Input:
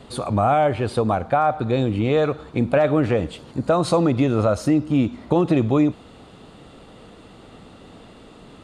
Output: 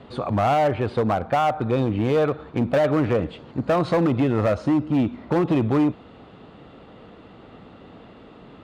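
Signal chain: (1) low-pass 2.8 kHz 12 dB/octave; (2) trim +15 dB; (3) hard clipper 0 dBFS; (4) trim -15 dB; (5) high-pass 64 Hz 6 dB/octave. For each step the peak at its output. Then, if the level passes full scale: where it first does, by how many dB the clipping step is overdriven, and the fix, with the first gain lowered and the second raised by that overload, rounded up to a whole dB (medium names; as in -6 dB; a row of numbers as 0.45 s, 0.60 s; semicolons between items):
-6.0 dBFS, +9.0 dBFS, 0.0 dBFS, -15.0 dBFS, -12.0 dBFS; step 2, 9.0 dB; step 2 +6 dB, step 4 -6 dB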